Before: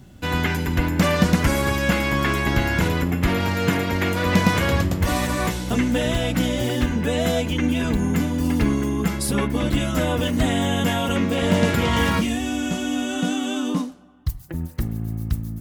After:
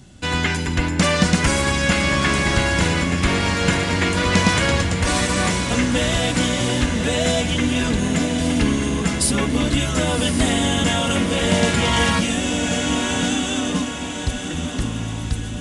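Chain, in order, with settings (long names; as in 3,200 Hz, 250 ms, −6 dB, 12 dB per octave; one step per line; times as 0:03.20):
high-shelf EQ 2,600 Hz +9 dB
on a send: feedback delay with all-pass diffusion 1,095 ms, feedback 51%, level −7 dB
on the sum: downsampling to 22,050 Hz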